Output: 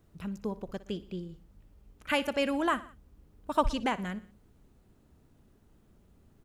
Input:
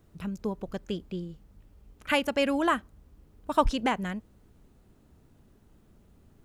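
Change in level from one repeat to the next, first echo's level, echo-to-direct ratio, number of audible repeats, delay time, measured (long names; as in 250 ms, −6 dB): −5.5 dB, −17.5 dB, −16.0 dB, 3, 60 ms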